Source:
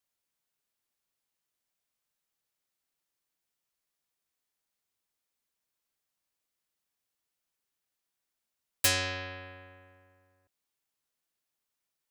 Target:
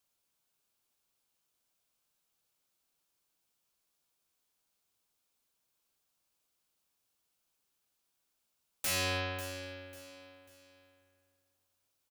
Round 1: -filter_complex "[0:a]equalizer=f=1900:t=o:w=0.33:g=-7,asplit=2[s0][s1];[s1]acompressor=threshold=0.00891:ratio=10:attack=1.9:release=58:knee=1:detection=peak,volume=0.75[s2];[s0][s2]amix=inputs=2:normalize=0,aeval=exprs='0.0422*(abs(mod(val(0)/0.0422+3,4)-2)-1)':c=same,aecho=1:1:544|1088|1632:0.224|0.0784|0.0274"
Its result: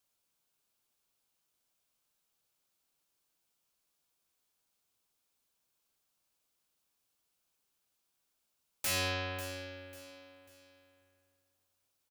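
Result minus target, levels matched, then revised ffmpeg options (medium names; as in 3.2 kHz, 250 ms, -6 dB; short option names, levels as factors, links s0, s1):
compression: peak gain reduction +6.5 dB
-filter_complex "[0:a]equalizer=f=1900:t=o:w=0.33:g=-7,asplit=2[s0][s1];[s1]acompressor=threshold=0.0211:ratio=10:attack=1.9:release=58:knee=1:detection=peak,volume=0.75[s2];[s0][s2]amix=inputs=2:normalize=0,aeval=exprs='0.0422*(abs(mod(val(0)/0.0422+3,4)-2)-1)':c=same,aecho=1:1:544|1088|1632:0.224|0.0784|0.0274"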